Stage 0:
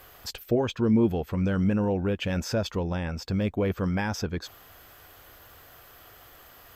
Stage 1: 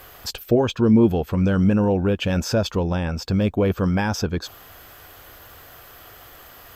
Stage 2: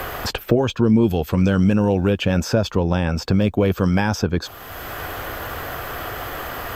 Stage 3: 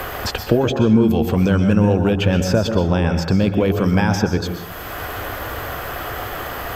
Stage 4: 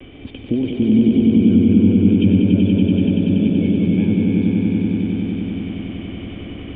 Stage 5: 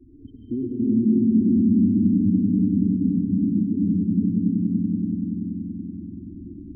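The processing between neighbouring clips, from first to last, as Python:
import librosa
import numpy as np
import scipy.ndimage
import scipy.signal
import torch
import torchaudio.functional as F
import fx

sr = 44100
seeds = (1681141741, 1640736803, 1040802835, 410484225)

y1 = fx.dynamic_eq(x, sr, hz=2000.0, q=4.7, threshold_db=-57.0, ratio=4.0, max_db=-7)
y1 = F.gain(torch.from_numpy(y1), 6.5).numpy()
y2 = fx.band_squash(y1, sr, depth_pct=70)
y2 = F.gain(torch.from_numpy(y2), 2.0).numpy()
y3 = fx.rev_plate(y2, sr, seeds[0], rt60_s=0.71, hf_ratio=0.5, predelay_ms=110, drr_db=6.5)
y3 = F.gain(torch.from_numpy(y3), 1.0).numpy()
y4 = fx.formant_cascade(y3, sr, vowel='i')
y4 = fx.vibrato(y4, sr, rate_hz=1.0, depth_cents=45.0)
y4 = fx.echo_swell(y4, sr, ms=95, loudest=5, wet_db=-4.5)
y4 = F.gain(torch.from_numpy(y4), 4.0).numpy()
y5 = fx.spec_topn(y4, sr, count=8)
y5 = fx.rev_freeverb(y5, sr, rt60_s=2.2, hf_ratio=0.6, predelay_ms=55, drr_db=-1.5)
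y5 = F.gain(torch.from_numpy(y5), -8.0).numpy()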